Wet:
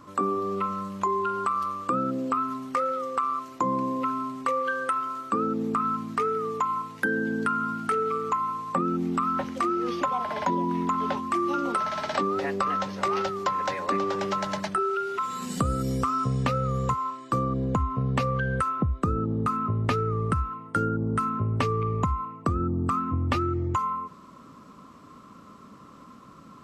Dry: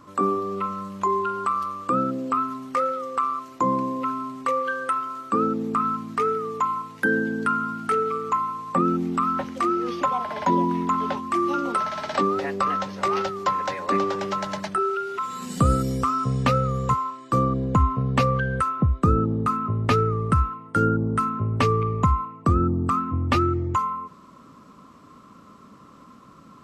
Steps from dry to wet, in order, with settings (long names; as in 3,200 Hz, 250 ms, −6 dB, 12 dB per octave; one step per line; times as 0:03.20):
downward compressor, threshold −22 dBFS, peak gain reduction 8 dB